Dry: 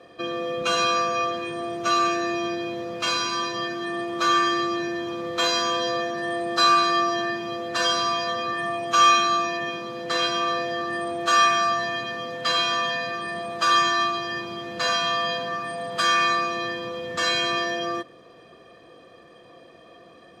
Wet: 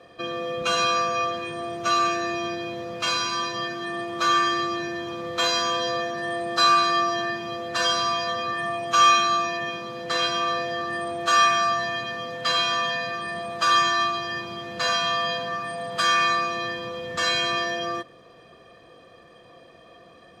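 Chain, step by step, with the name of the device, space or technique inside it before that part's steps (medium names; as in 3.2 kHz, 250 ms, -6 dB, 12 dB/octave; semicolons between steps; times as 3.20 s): low shelf boost with a cut just above (bass shelf 87 Hz +5.5 dB; peaking EQ 320 Hz -4 dB 0.93 oct)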